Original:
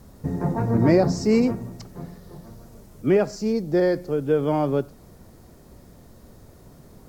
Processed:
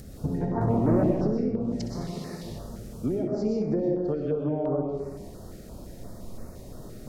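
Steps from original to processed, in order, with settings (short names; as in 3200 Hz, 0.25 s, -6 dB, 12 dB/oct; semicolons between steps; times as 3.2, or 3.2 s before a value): 2.01–2.43 weighting filter D; treble ducked by the level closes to 800 Hz, closed at -17 dBFS; compressor 16:1, threshold -28 dBFS, peak gain reduction 16.5 dB; 0.61–1.11 sample leveller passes 2; upward compressor, threshold -47 dBFS; on a send: flutter echo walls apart 10.9 m, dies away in 0.33 s; on the sum: digital reverb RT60 1 s, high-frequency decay 0.7×, pre-delay 80 ms, DRR -0.5 dB; stepped notch 5.8 Hz 980–3200 Hz; gain +3 dB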